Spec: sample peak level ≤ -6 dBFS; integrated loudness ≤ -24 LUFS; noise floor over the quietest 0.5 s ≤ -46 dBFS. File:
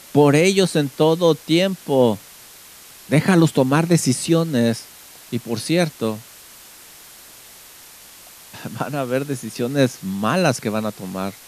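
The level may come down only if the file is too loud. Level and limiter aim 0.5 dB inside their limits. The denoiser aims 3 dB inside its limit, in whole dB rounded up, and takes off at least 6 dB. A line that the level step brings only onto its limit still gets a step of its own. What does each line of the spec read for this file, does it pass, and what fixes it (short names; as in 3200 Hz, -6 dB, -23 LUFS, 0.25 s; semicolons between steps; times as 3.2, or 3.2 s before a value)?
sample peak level -3.0 dBFS: fail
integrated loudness -19.5 LUFS: fail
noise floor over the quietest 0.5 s -43 dBFS: fail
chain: gain -5 dB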